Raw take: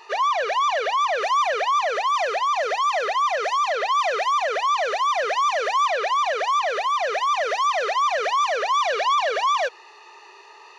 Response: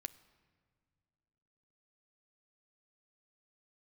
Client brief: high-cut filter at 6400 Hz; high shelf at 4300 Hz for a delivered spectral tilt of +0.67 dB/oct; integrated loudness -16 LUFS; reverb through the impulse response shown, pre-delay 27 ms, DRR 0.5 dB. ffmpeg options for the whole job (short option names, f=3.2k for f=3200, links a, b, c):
-filter_complex "[0:a]lowpass=6.4k,highshelf=f=4.3k:g=-5.5,asplit=2[a][b];[1:a]atrim=start_sample=2205,adelay=27[c];[b][c]afir=irnorm=-1:irlink=0,volume=3dB[d];[a][d]amix=inputs=2:normalize=0,volume=3dB"